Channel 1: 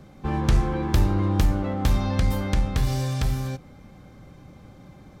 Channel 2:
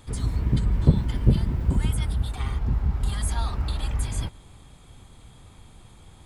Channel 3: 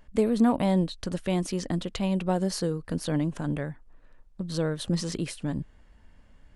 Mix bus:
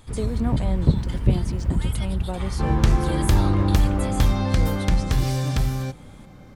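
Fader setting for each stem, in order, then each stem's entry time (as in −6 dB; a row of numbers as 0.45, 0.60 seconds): +2.0, −0.5, −5.5 decibels; 2.35, 0.00, 0.00 seconds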